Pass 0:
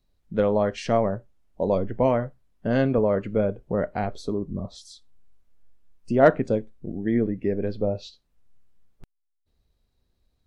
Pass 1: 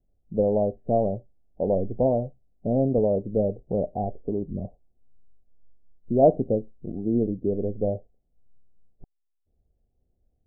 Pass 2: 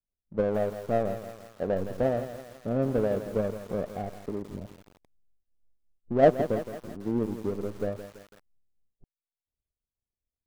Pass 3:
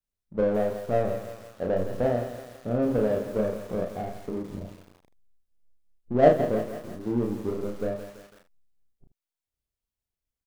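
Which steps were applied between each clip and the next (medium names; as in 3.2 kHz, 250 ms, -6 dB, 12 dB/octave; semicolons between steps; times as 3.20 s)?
Chebyshev low-pass 770 Hz, order 5
power-law waveshaper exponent 1.4; bit-crushed delay 166 ms, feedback 55%, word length 7-bit, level -11 dB
early reflections 33 ms -3.5 dB, 78 ms -12 dB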